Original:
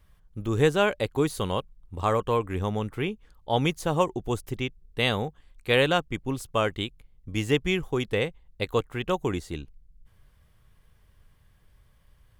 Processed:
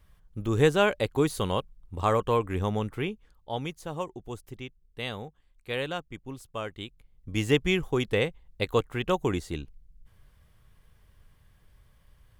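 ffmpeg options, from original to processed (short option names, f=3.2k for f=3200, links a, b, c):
-af "volume=10.5dB,afade=t=out:st=2.78:d=0.87:silence=0.316228,afade=t=in:st=6.76:d=0.68:silence=0.298538"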